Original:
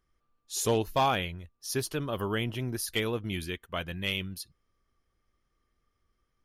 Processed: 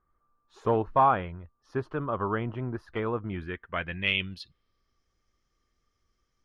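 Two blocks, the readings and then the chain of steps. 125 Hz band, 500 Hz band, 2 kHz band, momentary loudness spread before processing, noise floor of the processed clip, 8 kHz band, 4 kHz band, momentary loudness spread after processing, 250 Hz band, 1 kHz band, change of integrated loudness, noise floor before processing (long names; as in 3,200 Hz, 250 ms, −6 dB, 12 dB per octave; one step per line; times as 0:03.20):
0.0 dB, +1.5 dB, +2.5 dB, 11 LU, −78 dBFS, below −25 dB, −2.5 dB, 16 LU, +0.5 dB, +5.5 dB, +2.0 dB, −78 dBFS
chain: low-pass filter sweep 1,200 Hz → 6,100 Hz, 0:03.28–0:05.06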